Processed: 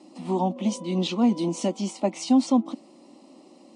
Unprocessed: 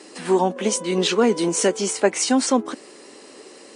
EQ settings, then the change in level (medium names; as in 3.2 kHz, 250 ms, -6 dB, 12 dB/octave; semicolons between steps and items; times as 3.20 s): RIAA curve playback; dynamic bell 3.6 kHz, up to +6 dB, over -41 dBFS, Q 0.83; static phaser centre 430 Hz, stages 6; -5.5 dB